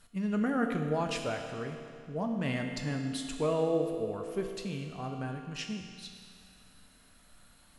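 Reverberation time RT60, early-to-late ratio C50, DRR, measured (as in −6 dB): 2.3 s, 4.5 dB, 3.0 dB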